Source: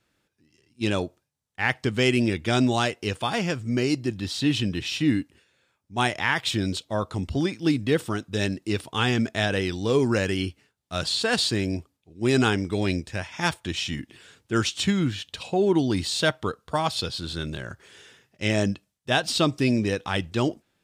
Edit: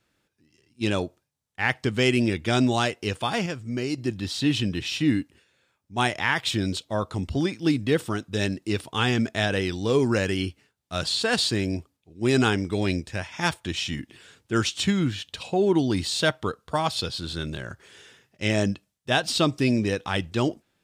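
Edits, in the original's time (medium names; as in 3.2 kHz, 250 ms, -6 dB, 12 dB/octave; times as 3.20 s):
3.46–3.98 s: gain -4.5 dB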